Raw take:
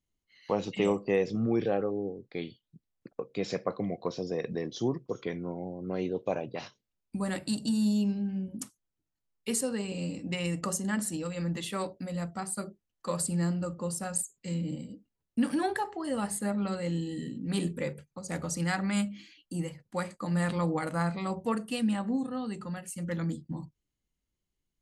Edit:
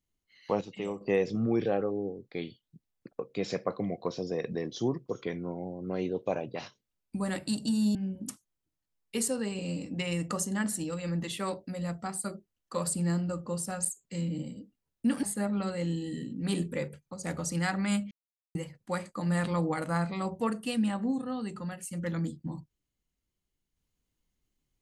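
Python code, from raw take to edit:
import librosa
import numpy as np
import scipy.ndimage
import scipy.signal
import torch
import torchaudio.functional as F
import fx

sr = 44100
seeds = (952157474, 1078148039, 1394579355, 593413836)

y = fx.edit(x, sr, fx.clip_gain(start_s=0.61, length_s=0.4, db=-8.5),
    fx.cut(start_s=7.95, length_s=0.33),
    fx.cut(start_s=15.56, length_s=0.72),
    fx.silence(start_s=19.16, length_s=0.44), tone=tone)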